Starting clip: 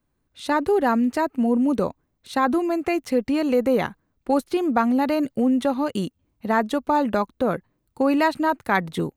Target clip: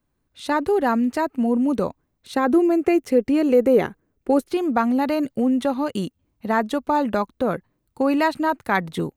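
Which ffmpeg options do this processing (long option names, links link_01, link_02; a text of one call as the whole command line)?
ffmpeg -i in.wav -filter_complex "[0:a]asettb=1/sr,asplit=3[link_01][link_02][link_03];[link_01]atrim=end=2.344[link_04];[link_02]atrim=start=2.34:end=4.48,asetpts=PTS-STARTPTS,afade=type=in:duration=0.004:curve=qsin,afade=type=out:start_time=2.136:duration=0.004:curve=qsin,equalizer=frequency=400:width_type=o:width=0.67:gain=9,equalizer=frequency=1000:width_type=o:width=0.67:gain=-4,equalizer=frequency=4000:width_type=o:width=0.67:gain=-5[link_05];[link_03]atrim=start=4.476[link_06];[link_04][link_05]acrossfade=duration=0.004:curve1=hsin:curve2=qsin[link_07];[link_07][link_06]acrossfade=duration=0.004:curve1=qsin:curve2=hsin" out.wav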